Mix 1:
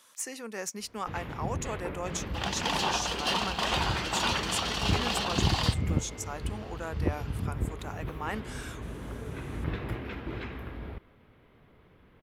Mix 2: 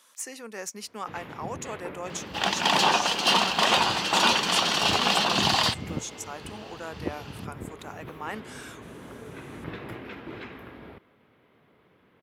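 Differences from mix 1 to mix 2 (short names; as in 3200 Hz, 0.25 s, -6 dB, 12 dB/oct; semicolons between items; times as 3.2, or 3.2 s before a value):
second sound +8.0 dB; master: add Bessel high-pass 190 Hz, order 2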